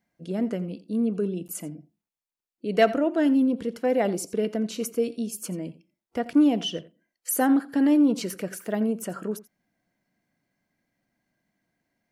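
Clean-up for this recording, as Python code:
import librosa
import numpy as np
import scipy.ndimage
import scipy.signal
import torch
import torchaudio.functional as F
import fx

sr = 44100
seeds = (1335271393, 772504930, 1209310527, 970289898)

y = fx.fix_declip(x, sr, threshold_db=-10.5)
y = fx.fix_interpolate(y, sr, at_s=(1.48,), length_ms=9.4)
y = fx.fix_echo_inverse(y, sr, delay_ms=86, level_db=-18.0)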